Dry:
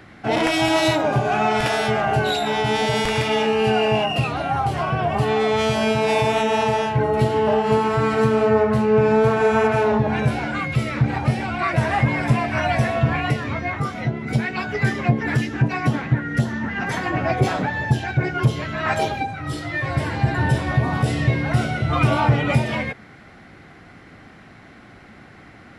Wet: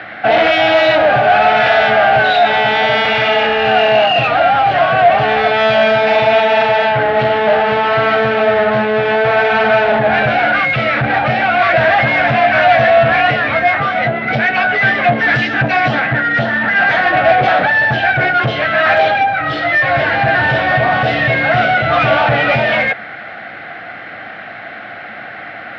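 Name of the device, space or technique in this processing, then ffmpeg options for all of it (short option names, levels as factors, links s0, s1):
overdrive pedal into a guitar cabinet: -filter_complex "[0:a]asettb=1/sr,asplit=3[s0][s1][s2];[s0]atrim=end=15.124[s3];[s1]atrim=start=15.12:end=16,asetpts=PTS-STARTPTS,afade=t=in:d=0.004:c=qsin,afade=t=out:st=0.876:d=0.004:c=qsin,bass=f=250:g=2,treble=f=4000:g=10[s4];[s2]atrim=start=15.996[s5];[s3][s4]acrossfade=d=0.004:c1=hsin:c2=qsin[s6];[s6][s5]acrossfade=d=0.004:c1=qsin:c2=hsin,asplit=2[s7][s8];[s8]highpass=f=720:p=1,volume=17.8,asoftclip=type=tanh:threshold=0.562[s9];[s7][s9]amix=inputs=2:normalize=0,lowpass=f=2800:p=1,volume=0.501,highpass=98,equalizer=f=170:t=q:w=4:g=-6,equalizer=f=260:t=q:w=4:g=-6,equalizer=f=390:t=q:w=4:g=-10,equalizer=f=690:t=q:w=4:g=7,equalizer=f=1000:t=q:w=4:g=-10,equalizer=f=1600:t=q:w=4:g=4,lowpass=f=3800:w=0.5412,lowpass=f=3800:w=1.3066,volume=1.12"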